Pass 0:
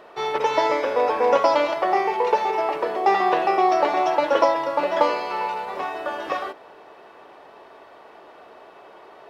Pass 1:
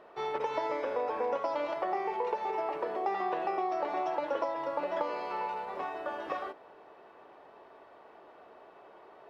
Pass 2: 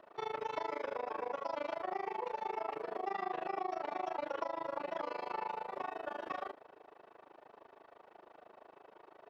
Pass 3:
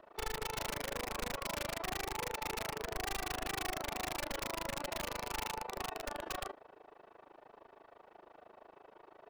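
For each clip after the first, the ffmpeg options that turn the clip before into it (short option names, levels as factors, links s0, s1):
-af "highshelf=f=2800:g=-9,acompressor=threshold=0.0891:ratio=6,volume=0.422"
-filter_complex "[0:a]acrossover=split=270|860[s0][s1][s2];[s1]alimiter=level_in=2.82:limit=0.0631:level=0:latency=1,volume=0.355[s3];[s0][s3][s2]amix=inputs=3:normalize=0,tremolo=f=26:d=0.974"
-af "aeval=exprs='(mod(39.8*val(0)+1,2)-1)/39.8':c=same,lowshelf=f=84:g=11"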